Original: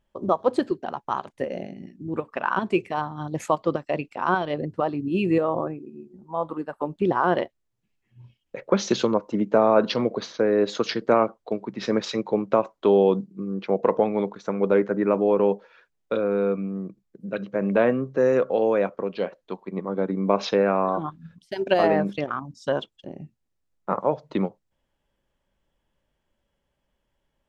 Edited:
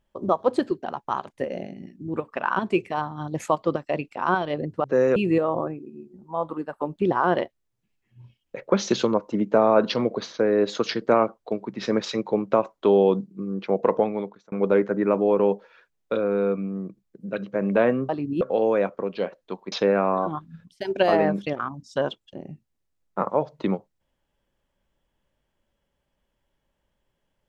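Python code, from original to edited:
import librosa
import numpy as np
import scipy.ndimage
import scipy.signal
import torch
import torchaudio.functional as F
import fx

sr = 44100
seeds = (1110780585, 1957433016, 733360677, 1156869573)

y = fx.edit(x, sr, fx.swap(start_s=4.84, length_s=0.32, other_s=18.09, other_length_s=0.32),
    fx.fade_out_span(start_s=13.98, length_s=0.54),
    fx.cut(start_s=19.72, length_s=0.71), tone=tone)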